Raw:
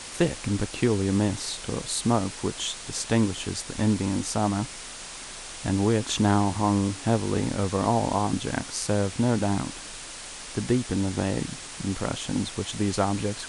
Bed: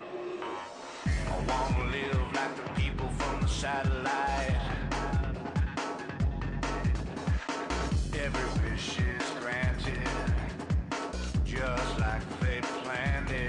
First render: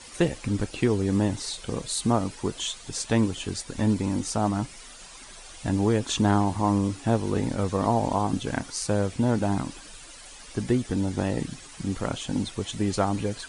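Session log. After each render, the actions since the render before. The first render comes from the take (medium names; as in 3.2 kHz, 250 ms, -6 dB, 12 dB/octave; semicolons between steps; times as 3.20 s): noise reduction 11 dB, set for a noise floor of -40 dBFS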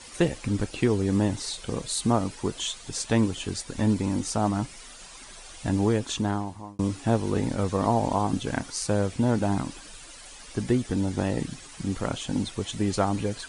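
5.84–6.79 s: fade out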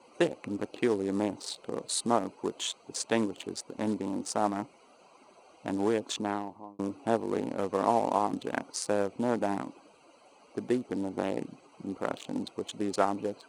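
local Wiener filter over 25 samples; high-pass 330 Hz 12 dB/octave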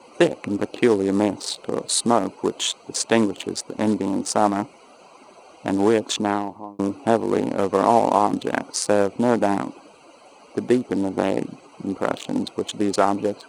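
trim +10 dB; peak limiter -3 dBFS, peak gain reduction 3 dB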